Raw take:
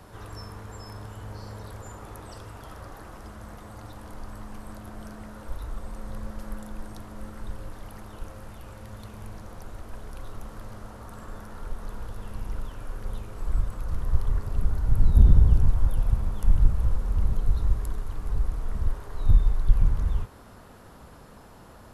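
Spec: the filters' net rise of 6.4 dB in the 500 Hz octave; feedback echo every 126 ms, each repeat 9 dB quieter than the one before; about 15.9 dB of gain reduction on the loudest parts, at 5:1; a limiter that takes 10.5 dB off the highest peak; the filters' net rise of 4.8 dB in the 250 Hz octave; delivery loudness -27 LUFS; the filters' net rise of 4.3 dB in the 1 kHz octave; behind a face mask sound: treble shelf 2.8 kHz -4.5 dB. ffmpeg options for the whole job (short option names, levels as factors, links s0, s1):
-af "equalizer=f=250:t=o:g=5.5,equalizer=f=500:t=o:g=5.5,equalizer=f=1000:t=o:g=4,acompressor=threshold=0.0447:ratio=5,alimiter=level_in=1.78:limit=0.0631:level=0:latency=1,volume=0.562,highshelf=f=2800:g=-4.5,aecho=1:1:126|252|378|504:0.355|0.124|0.0435|0.0152,volume=4.73"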